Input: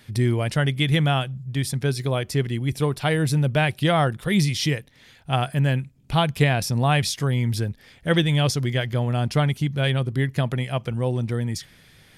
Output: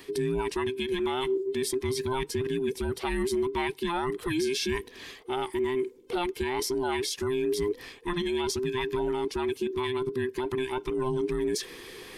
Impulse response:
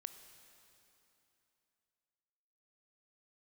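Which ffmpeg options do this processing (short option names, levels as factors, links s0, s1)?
-af "afftfilt=real='real(if(between(b,1,1008),(2*floor((b-1)/24)+1)*24-b,b),0)':imag='imag(if(between(b,1,1008),(2*floor((b-1)/24)+1)*24-b,b),0)*if(between(b,1,1008),-1,1)':win_size=2048:overlap=0.75,areverse,acompressor=threshold=0.0316:ratio=8,areverse,alimiter=level_in=1.68:limit=0.0631:level=0:latency=1:release=126,volume=0.596,volume=2.51"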